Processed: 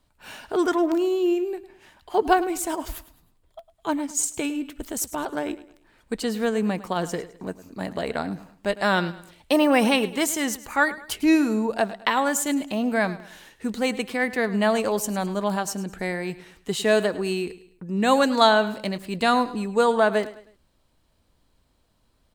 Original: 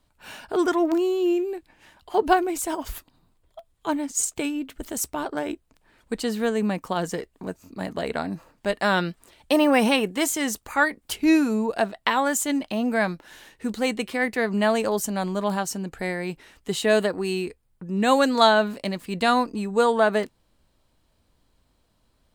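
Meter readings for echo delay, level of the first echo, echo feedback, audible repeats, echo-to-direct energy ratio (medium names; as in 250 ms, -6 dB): 105 ms, -16.5 dB, 38%, 3, -16.0 dB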